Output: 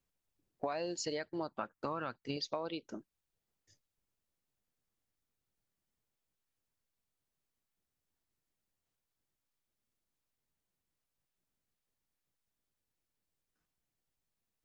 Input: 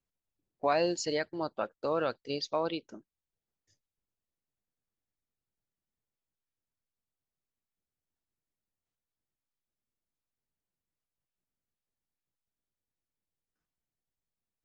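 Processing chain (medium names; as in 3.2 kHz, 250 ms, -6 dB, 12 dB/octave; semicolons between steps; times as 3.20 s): 1.48–2.37 s: graphic EQ 125/250/500/1000/2000/4000 Hz +4/+3/-9/+5/+3/-6 dB; compression 8:1, threshold -38 dBFS, peak gain reduction 15 dB; trim +3.5 dB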